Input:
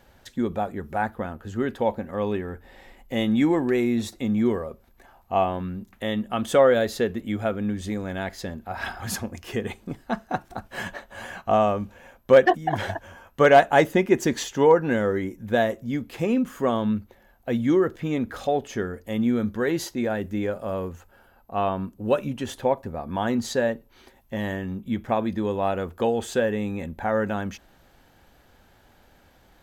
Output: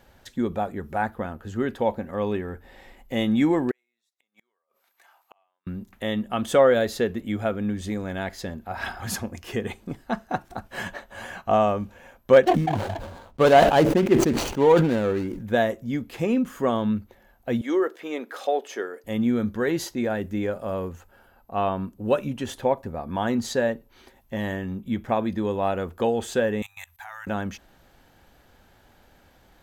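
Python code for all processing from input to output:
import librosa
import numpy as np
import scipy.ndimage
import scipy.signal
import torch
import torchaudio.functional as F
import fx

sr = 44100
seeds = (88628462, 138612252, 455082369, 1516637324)

y = fx.chain(x, sr, fx.highpass(hz=1100.0, slope=12),
    fx.notch(hz=1700.0, q=22.0),
    fx.gate_flip(shuts_db=-33.0, range_db=-40), at=(3.71, 5.67))
y = fx.chain(y, sr, fx.median_filter(points=25),
    fx.sustainer(db_per_s=57.0), at=(12.43, 15.43))
y = fx.chain(y, sr, fx.highpass(hz=350.0, slope=24),
    fx.notch(hz=6800.0, q=26.0), at=(17.61, 19.04))
y = fx.chain(y, sr, fx.cheby2_bandstop(low_hz=160.0, high_hz=490.0, order=4, stop_db=40),
    fx.tilt_eq(slope=4.0),
    fx.level_steps(step_db=20), at=(26.62, 27.27))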